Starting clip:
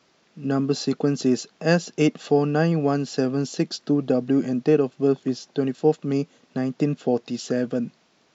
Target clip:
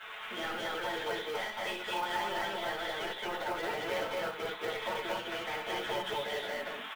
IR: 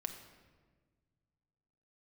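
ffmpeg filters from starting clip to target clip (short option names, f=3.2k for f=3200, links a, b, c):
-filter_complex "[0:a]highpass=780,aecho=1:1:5.6:0.8,acompressor=threshold=-42dB:ratio=10,flanger=delay=18.5:depth=5.7:speed=2,asetrate=52920,aresample=44100,aresample=8000,aresample=44100,asplit=2[a][b];[b]highpass=f=720:p=1,volume=28dB,asoftclip=type=tanh:threshold=-35dB[c];[a][c]amix=inputs=2:normalize=0,lowpass=f=2.4k:p=1,volume=-6dB,aecho=1:1:67.06|227.4:0.501|1,asplit=2[d][e];[1:a]atrim=start_sample=2205,atrim=end_sample=3969,adelay=9[f];[e][f]afir=irnorm=-1:irlink=0,volume=4.5dB[g];[d][g]amix=inputs=2:normalize=0,acrusher=bits=5:mode=log:mix=0:aa=0.000001"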